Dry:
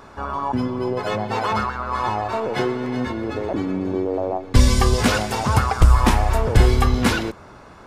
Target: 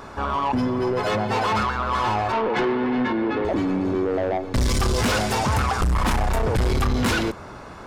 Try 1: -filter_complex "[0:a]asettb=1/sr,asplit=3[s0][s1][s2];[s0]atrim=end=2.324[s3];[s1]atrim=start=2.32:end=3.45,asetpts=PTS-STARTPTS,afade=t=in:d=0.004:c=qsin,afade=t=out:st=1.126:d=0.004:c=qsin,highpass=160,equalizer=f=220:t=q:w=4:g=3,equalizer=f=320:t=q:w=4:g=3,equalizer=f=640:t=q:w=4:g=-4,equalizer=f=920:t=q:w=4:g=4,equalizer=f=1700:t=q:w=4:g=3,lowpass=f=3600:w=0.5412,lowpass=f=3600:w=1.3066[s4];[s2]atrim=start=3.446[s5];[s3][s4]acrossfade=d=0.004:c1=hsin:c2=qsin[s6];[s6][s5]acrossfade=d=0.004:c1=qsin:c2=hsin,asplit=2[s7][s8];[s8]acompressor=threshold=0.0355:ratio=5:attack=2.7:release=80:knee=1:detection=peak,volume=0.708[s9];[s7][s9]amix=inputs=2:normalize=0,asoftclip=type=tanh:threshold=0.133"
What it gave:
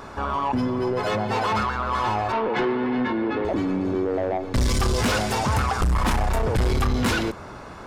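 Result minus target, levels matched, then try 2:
compression: peak gain reduction +9 dB
-filter_complex "[0:a]asettb=1/sr,asplit=3[s0][s1][s2];[s0]atrim=end=2.324[s3];[s1]atrim=start=2.32:end=3.45,asetpts=PTS-STARTPTS,afade=t=in:d=0.004:c=qsin,afade=t=out:st=1.126:d=0.004:c=qsin,highpass=160,equalizer=f=220:t=q:w=4:g=3,equalizer=f=320:t=q:w=4:g=3,equalizer=f=640:t=q:w=4:g=-4,equalizer=f=920:t=q:w=4:g=4,equalizer=f=1700:t=q:w=4:g=3,lowpass=f=3600:w=0.5412,lowpass=f=3600:w=1.3066[s4];[s2]atrim=start=3.446[s5];[s3][s4]acrossfade=d=0.004:c1=hsin:c2=qsin[s6];[s6][s5]acrossfade=d=0.004:c1=qsin:c2=hsin,asplit=2[s7][s8];[s8]acompressor=threshold=0.126:ratio=5:attack=2.7:release=80:knee=1:detection=peak,volume=0.708[s9];[s7][s9]amix=inputs=2:normalize=0,asoftclip=type=tanh:threshold=0.133"

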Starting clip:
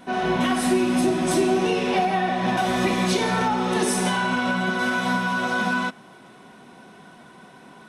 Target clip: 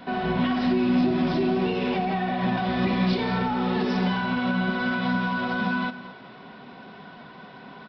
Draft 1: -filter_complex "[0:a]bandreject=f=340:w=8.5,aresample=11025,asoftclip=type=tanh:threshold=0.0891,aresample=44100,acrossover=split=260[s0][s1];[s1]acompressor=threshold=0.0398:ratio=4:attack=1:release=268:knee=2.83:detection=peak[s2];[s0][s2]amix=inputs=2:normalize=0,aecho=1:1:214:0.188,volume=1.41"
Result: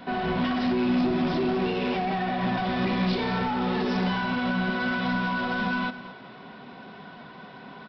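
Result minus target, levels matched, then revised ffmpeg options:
saturation: distortion +13 dB
-filter_complex "[0:a]bandreject=f=340:w=8.5,aresample=11025,asoftclip=type=tanh:threshold=0.266,aresample=44100,acrossover=split=260[s0][s1];[s1]acompressor=threshold=0.0398:ratio=4:attack=1:release=268:knee=2.83:detection=peak[s2];[s0][s2]amix=inputs=2:normalize=0,aecho=1:1:214:0.188,volume=1.41"

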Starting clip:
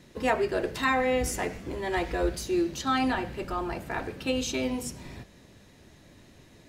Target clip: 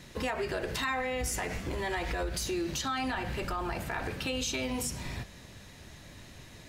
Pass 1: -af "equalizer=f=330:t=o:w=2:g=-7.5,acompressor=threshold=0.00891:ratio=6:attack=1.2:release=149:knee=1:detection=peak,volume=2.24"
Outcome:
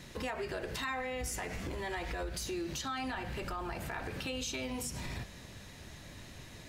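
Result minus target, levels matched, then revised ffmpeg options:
compression: peak gain reduction +5 dB
-af "equalizer=f=330:t=o:w=2:g=-7.5,acompressor=threshold=0.0178:ratio=6:attack=1.2:release=149:knee=1:detection=peak,volume=2.24"

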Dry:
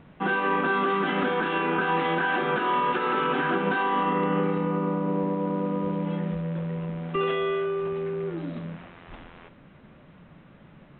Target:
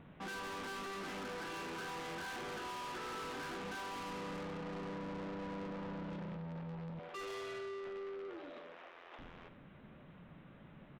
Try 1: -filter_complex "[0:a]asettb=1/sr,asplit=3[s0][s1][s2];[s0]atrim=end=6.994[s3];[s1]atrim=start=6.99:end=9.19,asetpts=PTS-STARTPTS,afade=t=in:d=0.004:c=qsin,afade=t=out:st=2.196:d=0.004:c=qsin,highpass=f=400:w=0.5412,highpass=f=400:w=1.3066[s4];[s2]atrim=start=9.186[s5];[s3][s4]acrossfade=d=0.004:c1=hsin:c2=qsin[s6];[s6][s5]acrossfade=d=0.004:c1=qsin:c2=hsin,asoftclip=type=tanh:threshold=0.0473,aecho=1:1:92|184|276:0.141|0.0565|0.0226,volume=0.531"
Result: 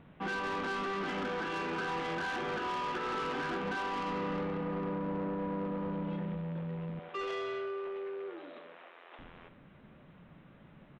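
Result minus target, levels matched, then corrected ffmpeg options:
saturation: distortion -6 dB
-filter_complex "[0:a]asettb=1/sr,asplit=3[s0][s1][s2];[s0]atrim=end=6.994[s3];[s1]atrim=start=6.99:end=9.19,asetpts=PTS-STARTPTS,afade=t=in:d=0.004:c=qsin,afade=t=out:st=2.196:d=0.004:c=qsin,highpass=f=400:w=0.5412,highpass=f=400:w=1.3066[s4];[s2]atrim=start=9.186[s5];[s3][s4]acrossfade=d=0.004:c1=hsin:c2=qsin[s6];[s6][s5]acrossfade=d=0.004:c1=qsin:c2=hsin,asoftclip=type=tanh:threshold=0.0141,aecho=1:1:92|184|276:0.141|0.0565|0.0226,volume=0.531"

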